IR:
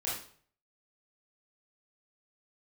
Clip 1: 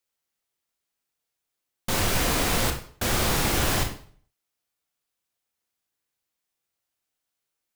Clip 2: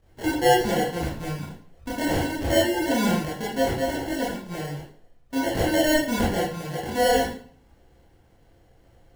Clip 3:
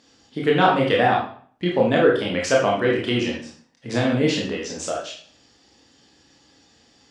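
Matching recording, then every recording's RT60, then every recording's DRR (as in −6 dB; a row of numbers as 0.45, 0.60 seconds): 2; 0.50, 0.50, 0.50 seconds; 3.5, −7.5, −3.0 decibels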